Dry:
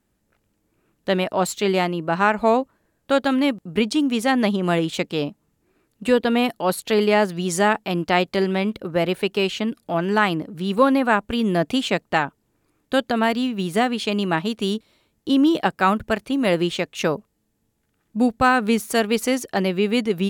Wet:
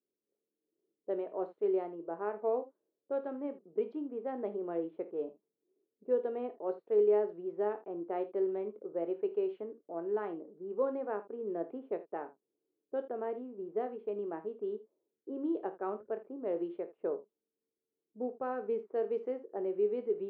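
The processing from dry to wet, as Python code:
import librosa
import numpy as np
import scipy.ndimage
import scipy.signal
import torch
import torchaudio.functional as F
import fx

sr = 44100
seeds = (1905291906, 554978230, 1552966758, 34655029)

y = fx.ladder_bandpass(x, sr, hz=460.0, resonance_pct=60)
y = fx.env_lowpass(y, sr, base_hz=460.0, full_db=-22.0)
y = fx.room_early_taps(y, sr, ms=(24, 53, 79), db=(-11.0, -15.0, -17.0))
y = F.gain(torch.from_numpy(y), -6.0).numpy()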